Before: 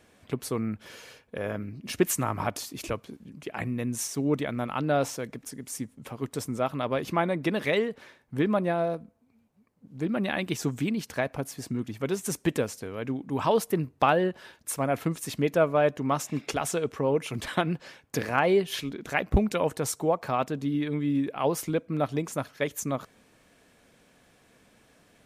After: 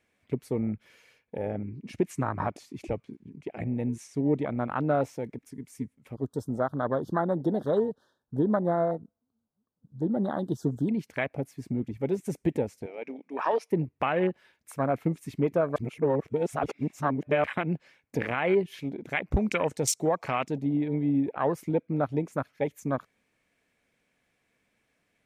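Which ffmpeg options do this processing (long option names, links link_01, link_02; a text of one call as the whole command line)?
ffmpeg -i in.wav -filter_complex "[0:a]asettb=1/sr,asplit=3[link_01][link_02][link_03];[link_01]atrim=end=1.474[link_04];[link_02]atrim=start=1.47:end=4.76,asetpts=PTS-STARTPTS,afade=type=in:duration=0.004:curve=qsin,afade=type=out:start_time=3.286:duration=0.004:curve=qsin,lowpass=9400[link_05];[link_03]atrim=start=4.756[link_06];[link_04][link_05]acrossfade=duration=0.004:curve1=hsin:curve2=qsin[link_07];[link_07][link_06]acrossfade=duration=0.004:curve1=qsin:curve2=hsin,asettb=1/sr,asplit=3[link_08][link_09][link_10];[link_08]atrim=end=6.144[link_11];[link_09]atrim=start=6.14:end=10.89,asetpts=PTS-STARTPTS,afade=type=in:duration=0.004:curve=qsin,afade=type=out:start_time=4.746:duration=0.004:curve=qsin,asuperstop=centerf=2300:order=8:qfactor=1.3[link_12];[link_10]atrim=start=10.886[link_13];[link_11][link_12]acrossfade=duration=0.004:curve1=hsin:curve2=qsin[link_14];[link_14][link_13]acrossfade=duration=0.004:curve1=qsin:curve2=hsin,asettb=1/sr,asplit=3[link_15][link_16][link_17];[link_15]atrim=end=12.864[link_18];[link_16]atrim=start=12.86:end=13.71,asetpts=PTS-STARTPTS,afade=type=in:duration=0.004:curve=qsin,afade=type=out:start_time=0.846:duration=0.004:curve=qsin,highpass=450,equalizer=frequency=2400:width_type=q:width=4:gain=9,equalizer=frequency=5500:width_type=q:width=4:gain=9,equalizer=frequency=7800:width_type=q:width=4:gain=-8,lowpass=frequency=10000:width=0.5412,lowpass=frequency=10000:width=1.3066[link_19];[link_17]atrim=start=13.706[link_20];[link_18][link_19]acrossfade=duration=0.004:curve1=hsin:curve2=qsin[link_21];[link_21][link_20]acrossfade=duration=0.004:curve1=qsin:curve2=hsin,asettb=1/sr,asplit=3[link_22][link_23][link_24];[link_22]atrim=end=19.314[link_25];[link_23]atrim=start=19.31:end=20.58,asetpts=PTS-STARTPTS,afade=type=in:duration=0.004:curve=qsin,afade=type=out:start_time=1.266:duration=0.004:curve=qsin,equalizer=frequency=6100:width=0.68:gain=14[link_26];[link_24]atrim=start=20.576[link_27];[link_25][link_26]acrossfade=duration=0.004:curve1=hsin:curve2=qsin[link_28];[link_28][link_27]acrossfade=duration=0.004:curve1=qsin:curve2=hsin,asplit=3[link_29][link_30][link_31];[link_29]atrim=end=15.762[link_32];[link_30]atrim=start=15.758:end=17.442,asetpts=PTS-STARTPTS,areverse[link_33];[link_31]atrim=start=17.438[link_34];[link_32][link_33]acrossfade=duration=0.004:curve1=hsin:curve2=hsin[link_35];[link_35][link_34]acrossfade=duration=0.004:curve1=hsin:curve2=hsin,afwtdn=0.0282,equalizer=frequency=2200:width_type=o:width=0.57:gain=9,alimiter=limit=-16dB:level=0:latency=1:release=120,volume=1dB" out.wav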